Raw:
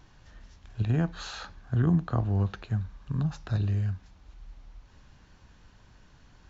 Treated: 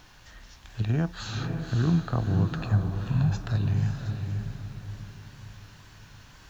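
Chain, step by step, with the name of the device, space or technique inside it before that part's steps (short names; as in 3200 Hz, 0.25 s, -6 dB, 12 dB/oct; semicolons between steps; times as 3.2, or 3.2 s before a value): 2.56–3.41 comb 1.2 ms, depth 80%; noise-reduction cassette on a plain deck (mismatched tape noise reduction encoder only; wow and flutter; white noise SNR 41 dB); diffused feedback echo 0.541 s, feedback 43%, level -5 dB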